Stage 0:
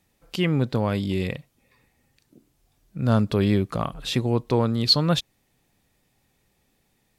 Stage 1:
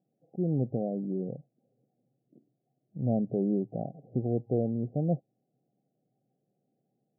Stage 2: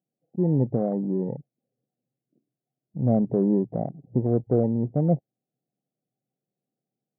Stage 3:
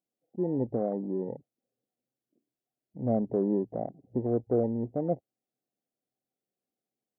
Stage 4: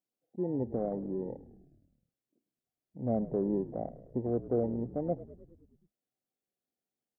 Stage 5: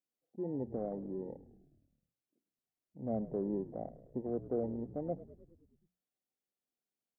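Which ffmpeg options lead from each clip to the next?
-af "afftfilt=real='re*between(b*sr/4096,110,800)':imag='im*between(b*sr/4096,110,800)':win_size=4096:overlap=0.75,volume=0.501"
-af "afwtdn=0.01,volume=2.11"
-af "equalizer=f=150:w=2:g=-13.5,volume=0.75"
-filter_complex "[0:a]asplit=8[s0][s1][s2][s3][s4][s5][s6][s7];[s1]adelay=104,afreqshift=-47,volume=0.158[s8];[s2]adelay=208,afreqshift=-94,volume=0.101[s9];[s3]adelay=312,afreqshift=-141,volume=0.0646[s10];[s4]adelay=416,afreqshift=-188,volume=0.0417[s11];[s5]adelay=520,afreqshift=-235,volume=0.0266[s12];[s6]adelay=624,afreqshift=-282,volume=0.017[s13];[s7]adelay=728,afreqshift=-329,volume=0.0108[s14];[s0][s8][s9][s10][s11][s12][s13][s14]amix=inputs=8:normalize=0,volume=0.668"
-af "bandreject=f=60:t=h:w=6,bandreject=f=120:t=h:w=6,bandreject=f=180:t=h:w=6,volume=0.562"

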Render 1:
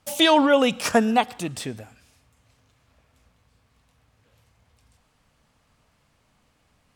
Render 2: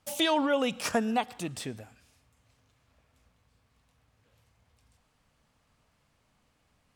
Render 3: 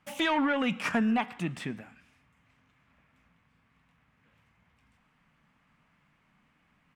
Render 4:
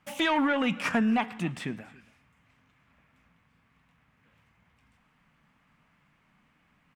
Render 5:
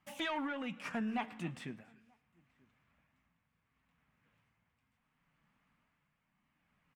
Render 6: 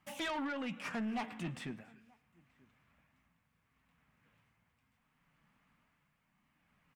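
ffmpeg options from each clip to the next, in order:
-af "acompressor=threshold=0.0708:ratio=1.5,volume=0.531"
-af "asoftclip=type=tanh:threshold=0.0794,firequalizer=gain_entry='entry(110,0);entry(160,12);entry(480,0);entry(990,8);entry(2100,12);entry(4200,-3);entry(12000,-7)':delay=0.05:min_phase=1,flanger=delay=1.8:depth=6.6:regen=-86:speed=0.43:shape=triangular"
-af "aecho=1:1:278:0.075,volume=1.19"
-filter_complex "[0:a]flanger=delay=1:depth=7.2:regen=-65:speed=0.31:shape=sinusoidal,asplit=2[s0][s1];[s1]adelay=932.9,volume=0.0398,highshelf=f=4000:g=-21[s2];[s0][s2]amix=inputs=2:normalize=0,tremolo=f=0.72:d=0.46,volume=0.562"
-af "asoftclip=type=tanh:threshold=0.0158,volume=1.41"

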